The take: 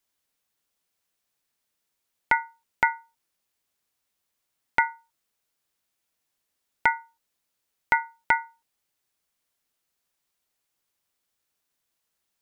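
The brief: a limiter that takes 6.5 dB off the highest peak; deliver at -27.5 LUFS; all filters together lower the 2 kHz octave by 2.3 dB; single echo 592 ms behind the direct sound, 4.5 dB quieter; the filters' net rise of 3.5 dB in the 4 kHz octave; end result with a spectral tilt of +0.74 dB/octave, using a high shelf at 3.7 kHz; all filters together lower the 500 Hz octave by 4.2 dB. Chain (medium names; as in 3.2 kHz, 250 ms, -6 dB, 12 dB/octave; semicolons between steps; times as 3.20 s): peaking EQ 500 Hz -5.5 dB; peaking EQ 2 kHz -4.5 dB; treble shelf 3.7 kHz +4.5 dB; peaking EQ 4 kHz +4 dB; peak limiter -13 dBFS; delay 592 ms -4.5 dB; trim +6 dB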